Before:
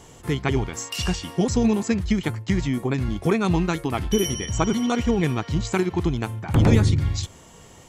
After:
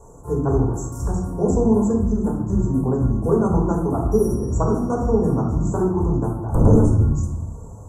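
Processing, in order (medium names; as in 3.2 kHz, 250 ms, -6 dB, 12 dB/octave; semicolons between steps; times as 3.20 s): inverse Chebyshev band-stop 2–4.3 kHz, stop band 50 dB; treble shelf 8.1 kHz -7 dB; reverberation RT60 0.85 s, pre-delay 3 ms, DRR -2.5 dB; trim -5.5 dB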